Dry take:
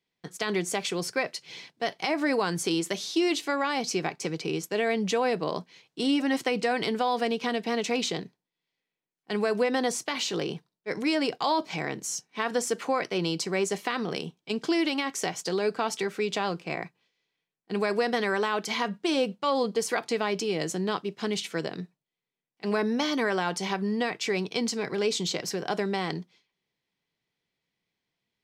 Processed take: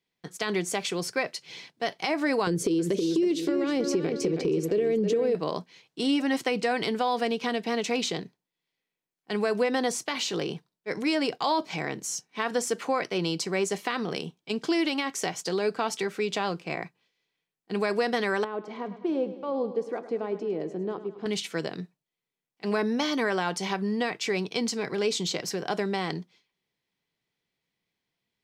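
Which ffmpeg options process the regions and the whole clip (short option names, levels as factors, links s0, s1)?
-filter_complex "[0:a]asettb=1/sr,asplit=3[s0][s1][s2];[s0]atrim=end=2.474[s3];[s1]atrim=start=2.47:end=5.35,asetpts=PTS-STARTPTS,afade=t=in:d=0.004:c=qsin,afade=t=out:st=2.876:d=0.004:c=qsin,lowshelf=f=610:t=q:w=3:g=10,asplit=2[s4][s5];[s5]adelay=319,lowpass=f=4800:p=1,volume=0.398,asplit=2[s6][s7];[s7]adelay=319,lowpass=f=4800:p=1,volume=0.31,asplit=2[s8][s9];[s9]adelay=319,lowpass=f=4800:p=1,volume=0.31,asplit=2[s10][s11];[s11]adelay=319,lowpass=f=4800:p=1,volume=0.31[s12];[s4][s6][s8][s10][s12]amix=inputs=5:normalize=0,atrim=end_sample=127008,acompressor=threshold=0.0708:ratio=5:attack=3.2:release=140:knee=1:detection=peak[s13];[s2]atrim=start=5.346[s14];[s3][s13]acrossfade=d=0.004:c1=hsin:c2=qsin[s15];[s15][s14]acrossfade=d=0.004:c1=qsin:c2=hsin,asettb=1/sr,asplit=3[s16][s17][s18];[s16]atrim=end=18.444[s19];[s17]atrim=start=18.44:end=21.26,asetpts=PTS-STARTPTS,afade=t=in:d=0.004:c=qsin,afade=t=out:st=2.816:d=0.004:c=qsin,bandpass=f=360:t=q:w=1.1,aecho=1:1:104|208|312|416|520|624:0.211|0.125|0.0736|0.0434|0.0256|0.0151,atrim=end_sample=124362[s20];[s18]atrim=start=21.256[s21];[s19][s20]acrossfade=d=0.004:c1=hsin:c2=qsin[s22];[s22][s21]acrossfade=d=0.004:c1=qsin:c2=hsin"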